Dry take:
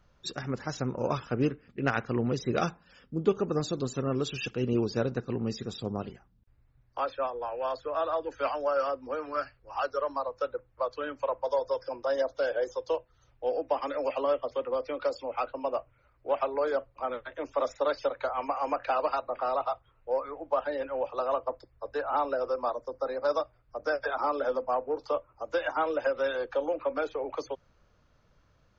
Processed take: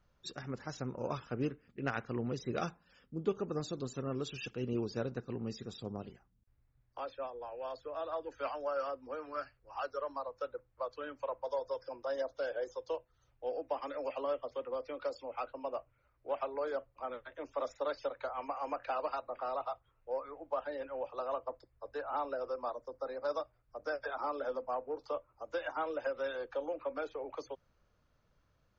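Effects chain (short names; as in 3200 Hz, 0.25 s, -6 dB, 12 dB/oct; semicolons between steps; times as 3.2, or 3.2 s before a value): 5.93–8.12 dynamic EQ 1300 Hz, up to -5 dB, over -43 dBFS, Q 1.1; gain -8 dB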